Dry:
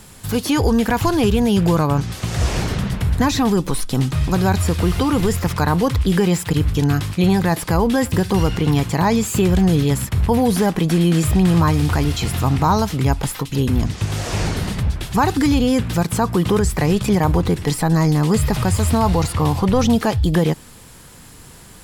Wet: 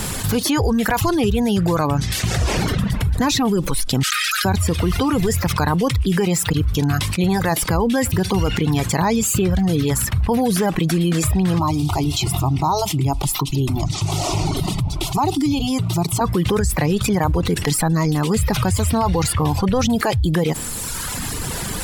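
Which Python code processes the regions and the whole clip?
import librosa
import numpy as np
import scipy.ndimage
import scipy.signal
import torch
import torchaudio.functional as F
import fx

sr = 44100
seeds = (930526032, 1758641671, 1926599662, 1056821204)

y = fx.chain(x, sr, fx.brickwall_highpass(low_hz=1200.0),
    fx.env_flatten(amount_pct=100), at=(4.03, 4.45))
y = fx.chain(y, sr, fx.high_shelf(hz=6500.0, db=-5.0),
    fx.fixed_phaser(hz=330.0, stages=8), at=(11.59, 16.21))
y = fx.dereverb_blind(y, sr, rt60_s=1.2)
y = fx.env_flatten(y, sr, amount_pct=70)
y = y * librosa.db_to_amplitude(-2.5)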